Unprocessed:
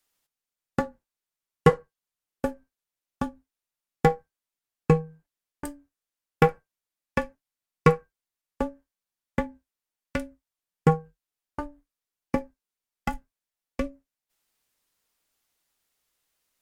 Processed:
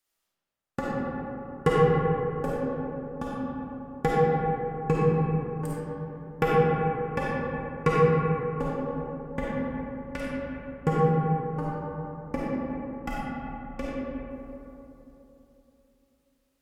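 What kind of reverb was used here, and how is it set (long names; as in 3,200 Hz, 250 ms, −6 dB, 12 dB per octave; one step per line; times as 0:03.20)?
comb and all-pass reverb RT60 3.4 s, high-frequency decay 0.35×, pre-delay 10 ms, DRR −7 dB
level −6.5 dB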